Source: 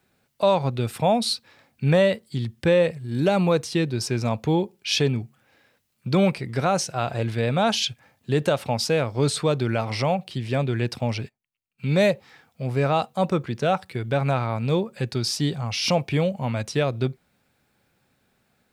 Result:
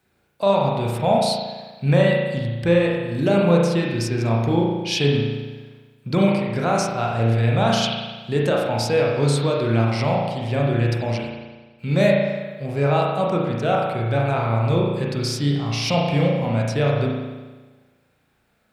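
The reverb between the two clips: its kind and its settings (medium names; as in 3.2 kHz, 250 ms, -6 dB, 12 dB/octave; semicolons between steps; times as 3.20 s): spring tank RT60 1.3 s, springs 35 ms, chirp 60 ms, DRR -2.5 dB; trim -1.5 dB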